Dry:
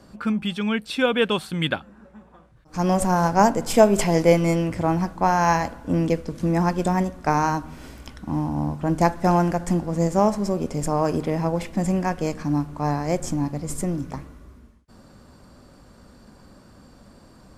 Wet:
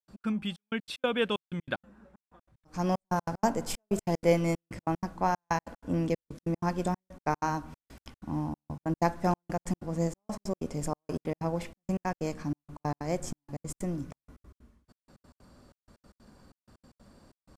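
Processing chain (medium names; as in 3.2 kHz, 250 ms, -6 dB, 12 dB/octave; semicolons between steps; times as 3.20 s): trance gate ".x.xxxx..x" 188 bpm -60 dB; trim -7.5 dB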